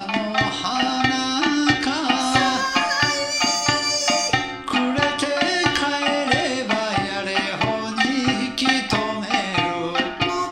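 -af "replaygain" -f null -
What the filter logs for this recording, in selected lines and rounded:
track_gain = +0.9 dB
track_peak = 0.485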